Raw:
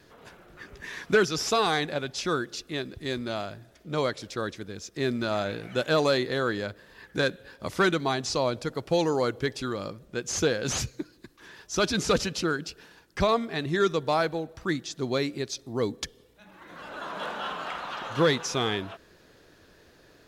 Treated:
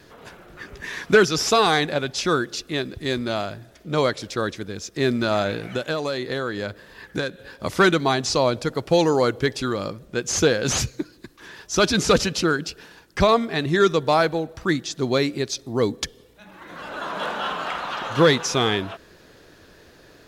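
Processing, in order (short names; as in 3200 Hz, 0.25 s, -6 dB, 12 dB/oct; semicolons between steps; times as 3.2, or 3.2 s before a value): 5.69–7.39 compressor 10:1, threshold -29 dBFS, peak gain reduction 10.5 dB; gain +6.5 dB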